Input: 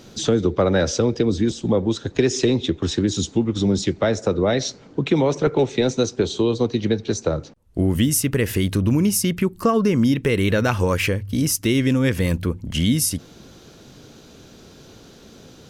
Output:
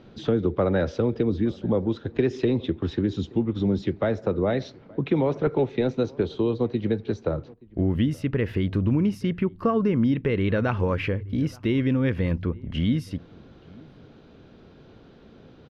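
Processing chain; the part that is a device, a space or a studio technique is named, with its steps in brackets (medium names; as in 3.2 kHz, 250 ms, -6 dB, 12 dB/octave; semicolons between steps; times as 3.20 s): shout across a valley (distance through air 360 m; echo from a far wall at 150 m, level -24 dB); trim -3.5 dB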